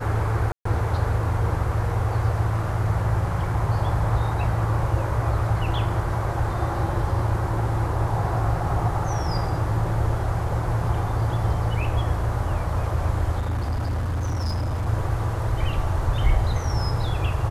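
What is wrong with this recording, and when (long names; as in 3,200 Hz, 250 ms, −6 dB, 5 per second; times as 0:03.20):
0:00.52–0:00.65: drop-out 134 ms
0:13.39–0:14.88: clipping −22 dBFS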